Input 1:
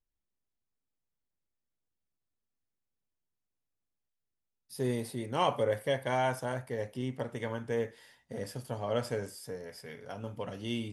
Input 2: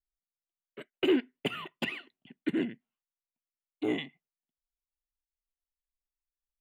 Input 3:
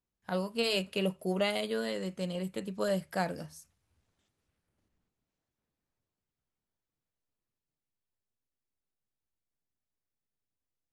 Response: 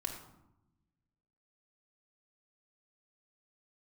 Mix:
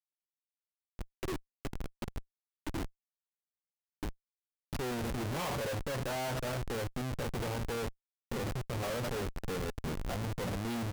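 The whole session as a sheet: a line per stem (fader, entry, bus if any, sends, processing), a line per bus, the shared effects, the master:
+2.5 dB, 0.00 s, no send, no processing
−6.0 dB, 0.20 s, send −18.5 dB, downward compressor 4 to 1, threshold −38 dBFS, peak gain reduction 14.5 dB; automatic ducking −12 dB, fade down 0.90 s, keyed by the first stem
−18.0 dB, 0.45 s, send −6 dB, high-shelf EQ 3,300 Hz +11.5 dB; brickwall limiter −28 dBFS, peak gain reduction 14 dB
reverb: on, RT60 0.85 s, pre-delay 3 ms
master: high-shelf EQ 2,000 Hz −4 dB; comparator with hysteresis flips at −40 dBFS

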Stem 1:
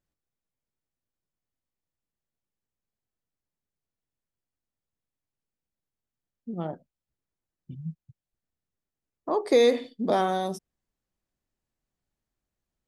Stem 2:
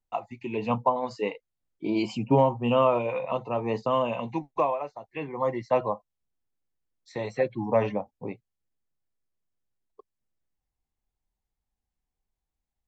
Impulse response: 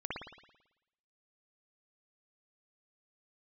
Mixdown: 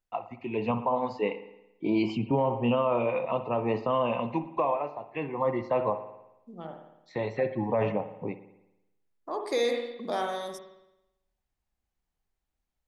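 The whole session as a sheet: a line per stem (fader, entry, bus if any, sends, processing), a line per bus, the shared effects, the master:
−6.0 dB, 0.00 s, send −3.5 dB, low-shelf EQ 480 Hz −11.5 dB
−4.0 dB, 0.00 s, send −13 dB, low-pass filter 3,500 Hz 12 dB per octave; automatic gain control gain up to 4 dB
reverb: on, RT60 0.90 s, pre-delay 55 ms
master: brickwall limiter −17 dBFS, peak gain reduction 8 dB

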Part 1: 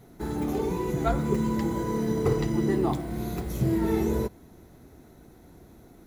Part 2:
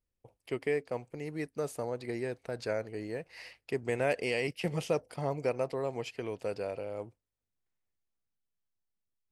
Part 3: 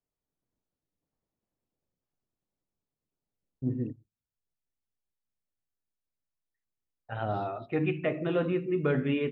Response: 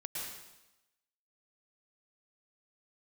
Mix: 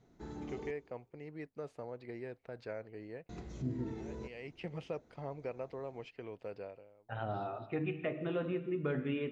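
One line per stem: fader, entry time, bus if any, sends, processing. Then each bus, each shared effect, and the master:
−14.0 dB, 0.00 s, muted 0:00.71–0:03.29, send −18 dB, elliptic low-pass filter 6,900 Hz; brickwall limiter −22 dBFS, peak gain reduction 8.5 dB
−8.5 dB, 0.00 s, no send, low-pass filter 3,200 Hz 12 dB per octave; automatic ducking −24 dB, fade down 0.45 s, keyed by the third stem
−5.0 dB, 0.00 s, send −14 dB, no processing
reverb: on, RT60 0.95 s, pre-delay 102 ms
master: downward compressor 1.5 to 1, threshold −38 dBFS, peak gain reduction 4.5 dB

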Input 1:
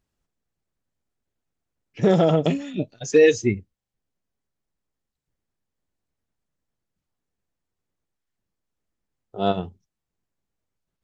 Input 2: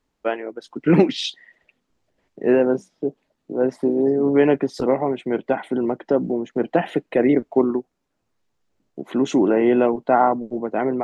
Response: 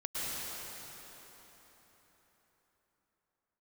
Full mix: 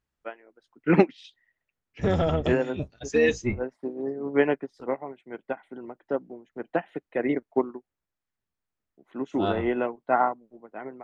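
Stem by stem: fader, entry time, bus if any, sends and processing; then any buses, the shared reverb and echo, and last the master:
−9.0 dB, 0.00 s, no send, sub-octave generator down 1 octave, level 0 dB
−3.0 dB, 0.00 s, no send, expander for the loud parts 2.5 to 1, over −26 dBFS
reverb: not used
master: parametric band 1,600 Hz +7.5 dB 2.1 octaves

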